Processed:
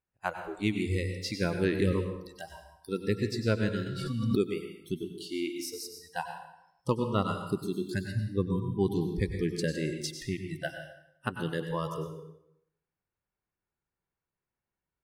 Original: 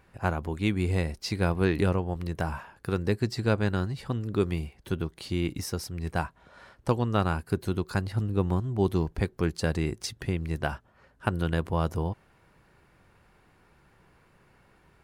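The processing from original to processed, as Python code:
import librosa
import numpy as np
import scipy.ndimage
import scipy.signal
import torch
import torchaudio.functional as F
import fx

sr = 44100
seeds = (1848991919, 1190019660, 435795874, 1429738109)

y = fx.noise_reduce_blind(x, sr, reduce_db=30)
y = fx.rev_plate(y, sr, seeds[0], rt60_s=0.79, hf_ratio=0.8, predelay_ms=85, drr_db=5.5)
y = fx.pre_swell(y, sr, db_per_s=33.0, at=(3.86, 4.41))
y = y * librosa.db_to_amplitude(-2.0)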